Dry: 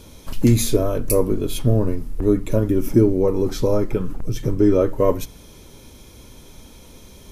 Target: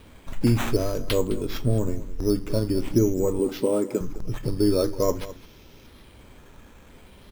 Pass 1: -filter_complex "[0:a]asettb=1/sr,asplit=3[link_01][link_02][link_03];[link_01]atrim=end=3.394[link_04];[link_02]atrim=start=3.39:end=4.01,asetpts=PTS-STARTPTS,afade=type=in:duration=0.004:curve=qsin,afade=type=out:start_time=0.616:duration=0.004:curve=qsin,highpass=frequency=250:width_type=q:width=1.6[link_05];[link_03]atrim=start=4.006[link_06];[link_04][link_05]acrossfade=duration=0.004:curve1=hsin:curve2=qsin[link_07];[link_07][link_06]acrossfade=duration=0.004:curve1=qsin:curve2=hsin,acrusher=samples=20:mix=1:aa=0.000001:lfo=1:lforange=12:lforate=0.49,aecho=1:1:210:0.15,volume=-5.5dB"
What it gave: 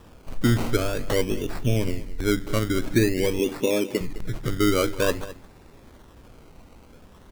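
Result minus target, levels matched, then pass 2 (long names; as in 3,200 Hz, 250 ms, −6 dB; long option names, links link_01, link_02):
sample-and-hold swept by an LFO: distortion +8 dB
-filter_complex "[0:a]asettb=1/sr,asplit=3[link_01][link_02][link_03];[link_01]atrim=end=3.394[link_04];[link_02]atrim=start=3.39:end=4.01,asetpts=PTS-STARTPTS,afade=type=in:duration=0.004:curve=qsin,afade=type=out:start_time=0.616:duration=0.004:curve=qsin,highpass=frequency=250:width_type=q:width=1.6[link_05];[link_03]atrim=start=4.006[link_06];[link_04][link_05]acrossfade=duration=0.004:curve1=hsin:curve2=qsin[link_07];[link_07][link_06]acrossfade=duration=0.004:curve1=qsin:curve2=hsin,acrusher=samples=7:mix=1:aa=0.000001:lfo=1:lforange=4.2:lforate=0.49,aecho=1:1:210:0.15,volume=-5.5dB"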